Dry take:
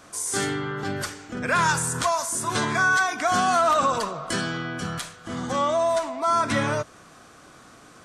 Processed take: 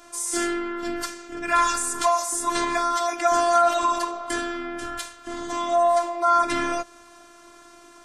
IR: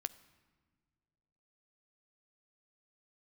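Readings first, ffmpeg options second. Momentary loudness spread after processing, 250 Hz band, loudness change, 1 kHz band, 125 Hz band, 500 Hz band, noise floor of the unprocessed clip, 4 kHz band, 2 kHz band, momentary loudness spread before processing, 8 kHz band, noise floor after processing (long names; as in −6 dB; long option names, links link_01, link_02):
13 LU, 0.0 dB, +0.5 dB, +1.5 dB, below −15 dB, +1.5 dB, −50 dBFS, −1.5 dB, −5.5 dB, 12 LU, 0.0 dB, −49 dBFS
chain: -af "afftfilt=real='hypot(re,im)*cos(PI*b)':imag='0':win_size=512:overlap=0.75,acontrast=39,volume=-1.5dB"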